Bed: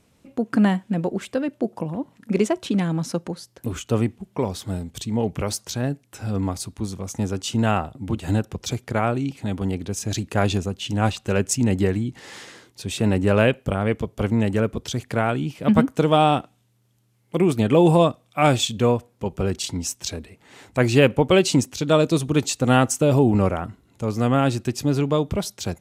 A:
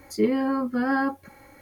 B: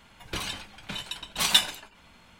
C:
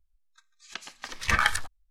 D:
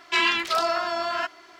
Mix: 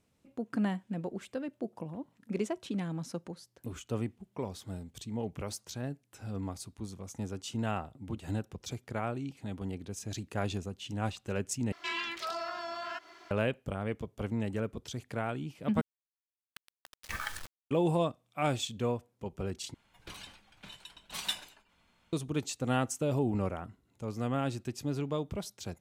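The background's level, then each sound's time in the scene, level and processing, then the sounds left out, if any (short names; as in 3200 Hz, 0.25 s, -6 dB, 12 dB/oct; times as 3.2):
bed -13 dB
11.72 replace with D -5 dB + compressor 1.5:1, threshold -43 dBFS
15.81 replace with C -15 dB + bit-crush 5-bit
19.74 replace with B -14 dB
not used: A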